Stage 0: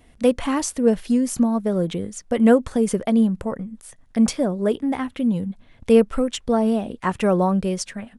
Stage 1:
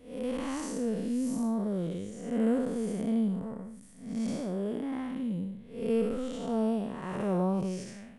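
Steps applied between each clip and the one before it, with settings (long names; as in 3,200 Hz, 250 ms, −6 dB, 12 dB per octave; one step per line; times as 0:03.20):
spectrum smeared in time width 242 ms
level −7 dB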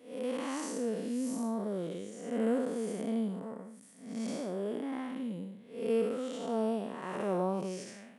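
high-pass filter 270 Hz 12 dB per octave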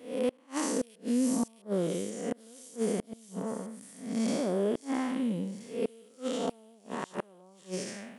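gate with flip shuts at −26 dBFS, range −32 dB
delay with a high-pass on its return 663 ms, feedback 59%, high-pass 4,500 Hz, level −8 dB
level +7 dB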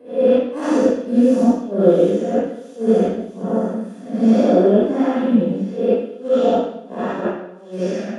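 convolution reverb RT60 0.70 s, pre-delay 50 ms, DRR −12.5 dB
level −10 dB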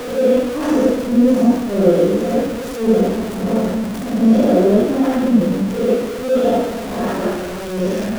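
converter with a step at zero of −20.5 dBFS
low-shelf EQ 210 Hz +6 dB
level −2.5 dB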